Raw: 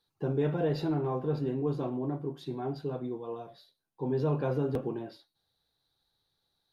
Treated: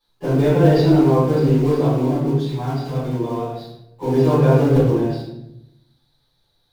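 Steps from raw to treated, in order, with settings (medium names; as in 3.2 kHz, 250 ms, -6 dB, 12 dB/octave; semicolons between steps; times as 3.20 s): in parallel at -10.5 dB: companded quantiser 4-bit; 2.40–2.99 s: on the sum: peaking EQ 360 Hz -15 dB 0.59 oct; simulated room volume 230 m³, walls mixed, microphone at 5.8 m; trim -3 dB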